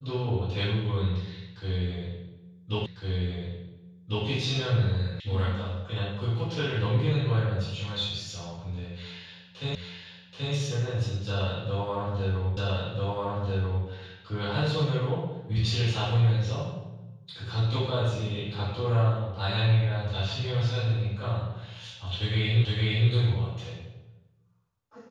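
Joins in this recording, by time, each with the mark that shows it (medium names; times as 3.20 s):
2.86 s: repeat of the last 1.4 s
5.20 s: sound stops dead
9.75 s: repeat of the last 0.78 s
12.57 s: repeat of the last 1.29 s
22.65 s: repeat of the last 0.46 s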